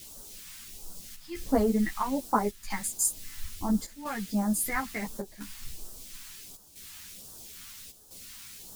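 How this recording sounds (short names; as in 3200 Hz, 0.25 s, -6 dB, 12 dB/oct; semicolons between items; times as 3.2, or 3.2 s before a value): a quantiser's noise floor 8-bit, dither triangular; phasing stages 2, 1.4 Hz, lowest notch 460–2100 Hz; chopped level 0.74 Hz, depth 65%, duty 85%; a shimmering, thickened sound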